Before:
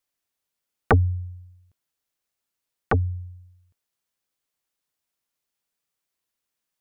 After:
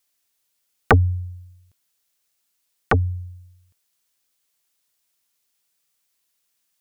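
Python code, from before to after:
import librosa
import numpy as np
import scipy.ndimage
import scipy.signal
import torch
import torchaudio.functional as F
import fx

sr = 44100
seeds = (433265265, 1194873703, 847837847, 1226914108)

y = fx.high_shelf(x, sr, hz=2200.0, db=9.5)
y = y * librosa.db_to_amplitude(2.5)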